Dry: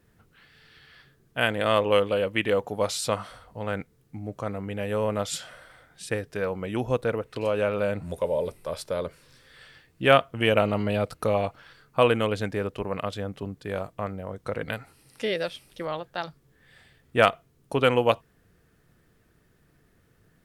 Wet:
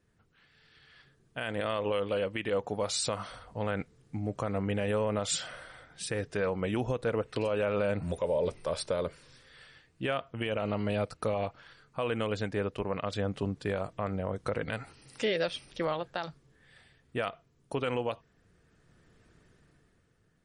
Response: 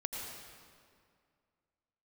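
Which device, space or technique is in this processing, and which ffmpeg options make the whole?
low-bitrate web radio: -af "dynaudnorm=f=110:g=17:m=4.22,alimiter=limit=0.237:level=0:latency=1:release=96,volume=0.398" -ar 48000 -c:a libmp3lame -b:a 40k

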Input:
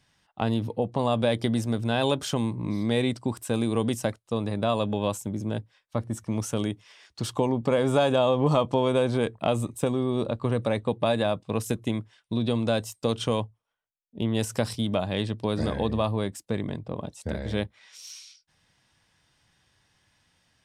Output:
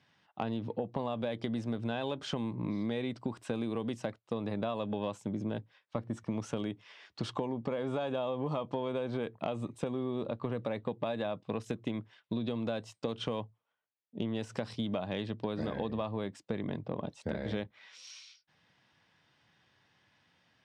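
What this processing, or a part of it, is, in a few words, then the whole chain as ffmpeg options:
AM radio: -af "highpass=130,lowpass=3700,acompressor=threshold=0.0316:ratio=10,asoftclip=type=tanh:threshold=0.133"

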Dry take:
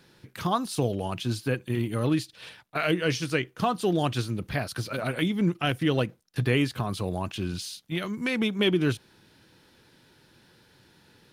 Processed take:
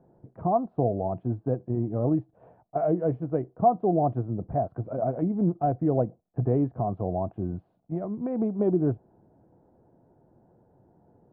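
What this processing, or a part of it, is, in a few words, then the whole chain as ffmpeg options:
under water: -af "lowpass=f=820:w=0.5412,lowpass=f=820:w=1.3066,equalizer=f=690:t=o:w=0.31:g=11.5"

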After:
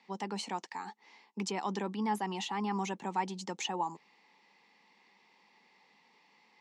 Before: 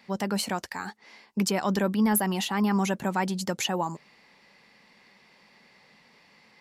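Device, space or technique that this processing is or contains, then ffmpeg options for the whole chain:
television speaker: -af "highpass=f=200:w=0.5412,highpass=f=200:w=1.3066,equalizer=f=230:t=q:w=4:g=-4,equalizer=f=600:t=q:w=4:g=-10,equalizer=f=870:t=q:w=4:g=7,equalizer=f=1500:t=q:w=4:g=-9,equalizer=f=4700:t=q:w=4:g=-4,lowpass=f=7200:w=0.5412,lowpass=f=7200:w=1.3066,volume=0.473"

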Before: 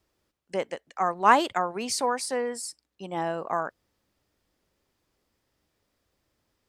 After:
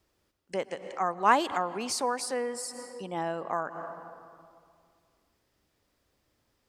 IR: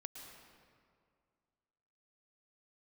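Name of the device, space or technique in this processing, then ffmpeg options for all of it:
ducked reverb: -filter_complex "[0:a]asplit=3[s0][s1][s2];[1:a]atrim=start_sample=2205[s3];[s1][s3]afir=irnorm=-1:irlink=0[s4];[s2]apad=whole_len=294764[s5];[s4][s5]sidechaincompress=threshold=0.00708:ratio=8:attack=29:release=114,volume=1.58[s6];[s0][s6]amix=inputs=2:normalize=0,volume=0.631"

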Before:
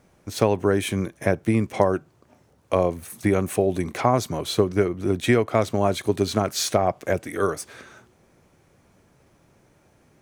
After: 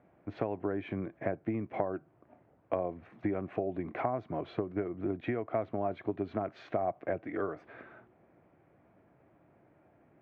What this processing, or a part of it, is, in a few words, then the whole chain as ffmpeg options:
bass amplifier: -af "acompressor=threshold=0.0501:ratio=4,highpass=67,equalizer=f=76:t=q:w=4:g=-4,equalizer=f=310:t=q:w=4:g=6,equalizer=f=680:t=q:w=4:g=8,lowpass=f=2300:w=0.5412,lowpass=f=2300:w=1.3066,volume=0.447"

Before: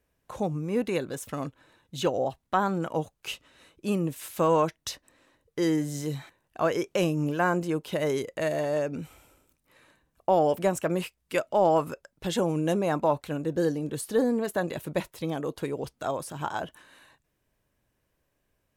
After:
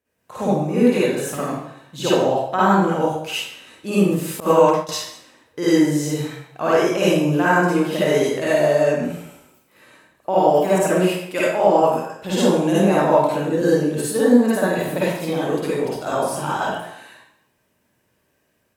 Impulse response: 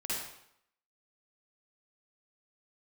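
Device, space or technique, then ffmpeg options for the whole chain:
far laptop microphone: -filter_complex "[1:a]atrim=start_sample=2205[s0];[0:a][s0]afir=irnorm=-1:irlink=0,highpass=110,dynaudnorm=f=160:g=3:m=2.24,asettb=1/sr,asplit=3[s1][s2][s3];[s1]atrim=end=4.404[s4];[s2]atrim=start=4.4:end=4.89,asetpts=PTS-STARTPTS,afade=t=in:d=0.004:c=qsin,afade=t=out:st=0.486:d=0.004:c=qsin,agate=range=0.0224:threshold=0.2:ratio=3:detection=peak[s5];[s3]atrim=start=4.886[s6];[s4][s5]acrossfade=d=0.004:c1=hsin:c2=qsin[s7];[s7][s6]acrossfade=d=0.004:c1=qsin:c2=hsin"

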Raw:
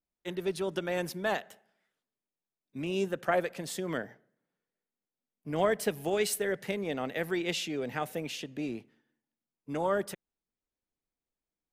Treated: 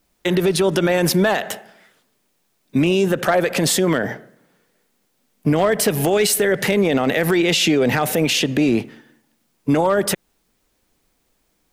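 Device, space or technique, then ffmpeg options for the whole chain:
loud club master: -af "acompressor=threshold=0.02:ratio=2,asoftclip=type=hard:threshold=0.0531,alimiter=level_in=50.1:limit=0.891:release=50:level=0:latency=1,volume=0.398"

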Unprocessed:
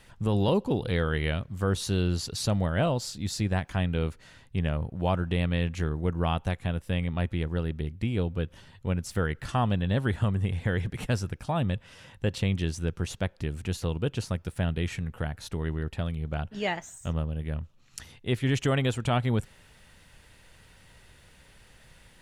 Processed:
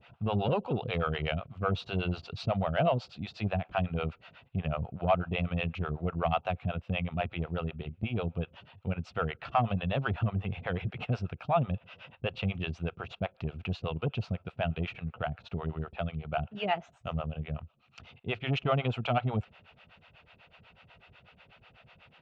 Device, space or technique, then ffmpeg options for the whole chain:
guitar amplifier with harmonic tremolo: -filter_complex "[0:a]acrossover=split=460[s0][s1];[s0]aeval=exprs='val(0)*(1-1/2+1/2*cos(2*PI*8.1*n/s))':c=same[s2];[s1]aeval=exprs='val(0)*(1-1/2-1/2*cos(2*PI*8.1*n/s))':c=same[s3];[s2][s3]amix=inputs=2:normalize=0,asoftclip=type=tanh:threshold=0.0891,highpass=84,equalizer=f=300:t=q:w=4:g=-6,equalizer=f=700:t=q:w=4:g=10,equalizer=f=1300:t=q:w=4:g=7,equalizer=f=1800:t=q:w=4:g=-7,equalizer=f=2600:t=q:w=4:g=8,lowpass=f=3600:w=0.5412,lowpass=f=3600:w=1.3066,volume=1.26"

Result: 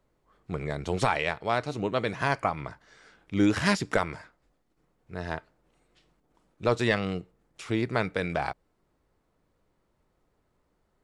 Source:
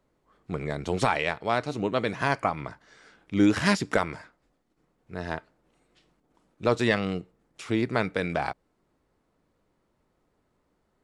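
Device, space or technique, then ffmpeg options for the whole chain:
low shelf boost with a cut just above: -af "lowshelf=f=77:g=5.5,equalizer=f=250:t=o:w=0.76:g=-3,volume=0.891"

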